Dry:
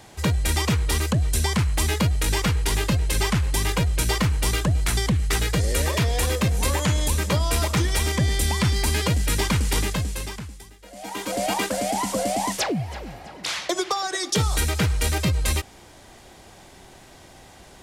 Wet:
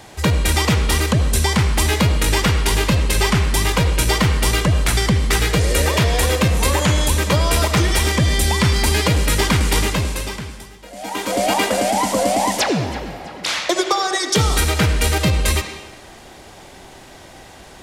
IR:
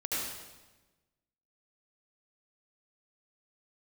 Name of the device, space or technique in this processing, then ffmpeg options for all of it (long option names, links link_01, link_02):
filtered reverb send: -filter_complex "[0:a]asplit=2[link_01][link_02];[link_02]highpass=220,lowpass=5600[link_03];[1:a]atrim=start_sample=2205[link_04];[link_03][link_04]afir=irnorm=-1:irlink=0,volume=-10.5dB[link_05];[link_01][link_05]amix=inputs=2:normalize=0,volume=5dB"